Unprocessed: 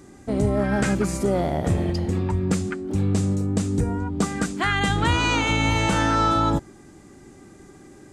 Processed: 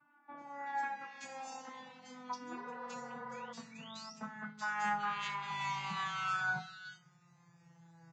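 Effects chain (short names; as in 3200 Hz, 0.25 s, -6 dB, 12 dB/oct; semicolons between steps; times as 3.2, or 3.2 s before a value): vocoder on a gliding note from D4, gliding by -10 st; EQ curve 140 Hz 0 dB, 200 Hz -26 dB, 420 Hz -29 dB, 920 Hz -1 dB; reverse; compressor 6:1, threshold -31 dBFS, peak gain reduction 5.5 dB; reverse; painted sound rise, 2.4–3.75, 250–5900 Hz -50 dBFS; resonator bank E3 major, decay 0.25 s; spectral repair 2.55–3.5, 420–2200 Hz before; bands offset in time lows, highs 0.38 s, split 2300 Hz; on a send at -22 dB: reverb RT60 1.1 s, pre-delay 3 ms; on the sum: gain +12.5 dB; Vorbis 32 kbps 16000 Hz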